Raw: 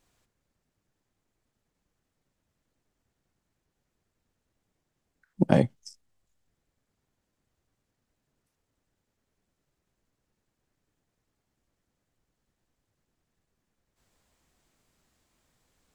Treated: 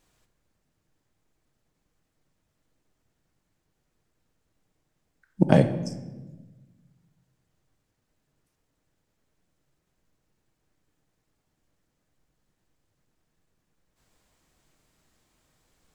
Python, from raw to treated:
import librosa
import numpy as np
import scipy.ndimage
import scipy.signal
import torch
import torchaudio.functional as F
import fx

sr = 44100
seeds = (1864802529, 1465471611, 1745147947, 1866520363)

y = fx.room_shoebox(x, sr, seeds[0], volume_m3=730.0, walls='mixed', distance_m=0.54)
y = y * 10.0 ** (2.5 / 20.0)